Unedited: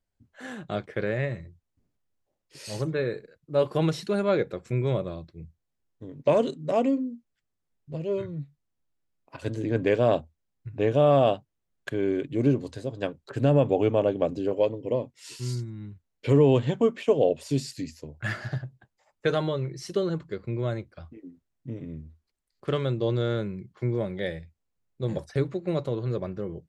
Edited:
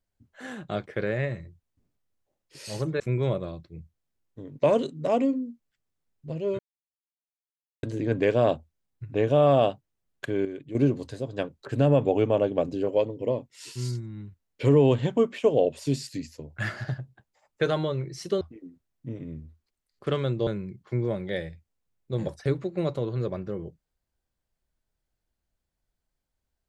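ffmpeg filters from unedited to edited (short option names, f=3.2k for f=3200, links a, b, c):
-filter_complex "[0:a]asplit=8[a][b][c][d][e][f][g][h];[a]atrim=end=3.002[i];[b]atrim=start=4.638:end=8.23,asetpts=PTS-STARTPTS,afade=t=out:st=3.588:d=0.004:c=hsin[j];[c]atrim=start=8.23:end=9.47,asetpts=PTS-STARTPTS,volume=0[k];[d]atrim=start=9.47:end=12.092,asetpts=PTS-STARTPTS,afade=t=in:d=0.004:c=hsin[l];[e]atrim=start=12.088:end=12.392,asetpts=PTS-STARTPTS,volume=-9dB[m];[f]atrim=start=12.388:end=20.052[n];[g]atrim=start=21.018:end=23.082[o];[h]atrim=start=23.368[p];[j][k][l]concat=n=3:v=0:a=1[q];[i][q]acrossfade=d=0.004:c1=hsin:c2=hsin[r];[r][m]acrossfade=d=0.004:c1=hsin:c2=hsin[s];[s][n]acrossfade=d=0.004:c1=hsin:c2=hsin[t];[t][o]acrossfade=d=0.004:c1=hsin:c2=hsin[u];[u][p]acrossfade=d=0.004:c1=hsin:c2=hsin"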